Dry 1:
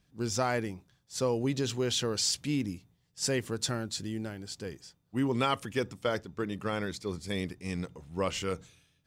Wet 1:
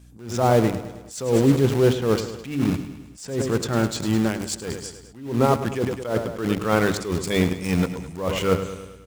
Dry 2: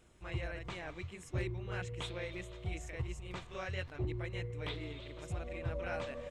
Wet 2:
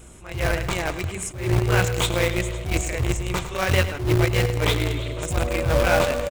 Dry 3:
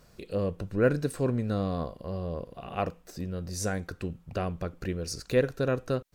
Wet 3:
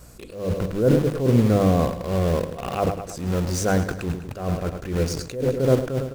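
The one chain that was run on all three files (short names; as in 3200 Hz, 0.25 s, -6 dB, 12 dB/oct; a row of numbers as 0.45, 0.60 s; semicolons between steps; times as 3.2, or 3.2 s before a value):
notches 50/100/150/200/250/300 Hz; treble ducked by the level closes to 690 Hz, closed at -24.5 dBFS; bell 1800 Hz -3.5 dB 0.21 oct; vibrato 1.2 Hz 12 cents; resonant high shelf 6100 Hz +7 dB, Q 1.5; in parallel at -6 dB: bit-crush 6-bit; on the sum: hum 60 Hz, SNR 29 dB; feedback echo 0.105 s, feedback 56%, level -13 dB; attack slew limiter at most 100 dB/s; match loudness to -23 LUFS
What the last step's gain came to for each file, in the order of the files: +12.0, +17.5, +9.0 dB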